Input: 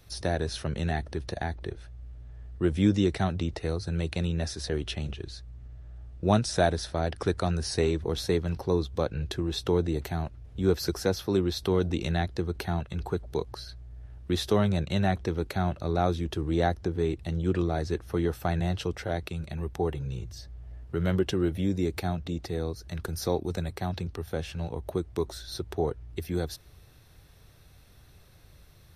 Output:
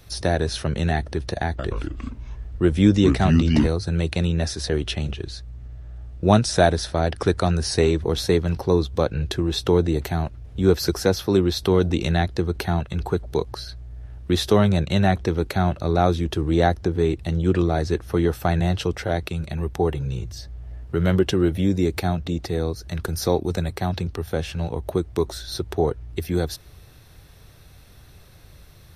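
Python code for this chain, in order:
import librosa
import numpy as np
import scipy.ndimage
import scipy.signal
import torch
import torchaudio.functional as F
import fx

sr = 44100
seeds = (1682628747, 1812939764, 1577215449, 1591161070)

y = fx.echo_pitch(x, sr, ms=125, semitones=-4, count=2, db_per_echo=-3.0, at=(1.46, 3.68))
y = F.gain(torch.from_numpy(y), 7.0).numpy()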